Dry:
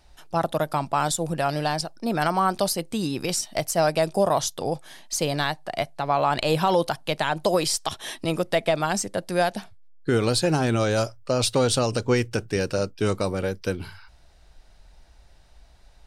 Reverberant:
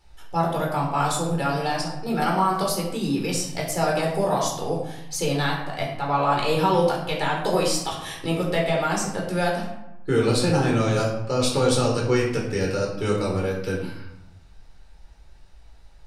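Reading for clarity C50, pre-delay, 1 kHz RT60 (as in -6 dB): 4.0 dB, 11 ms, 0.95 s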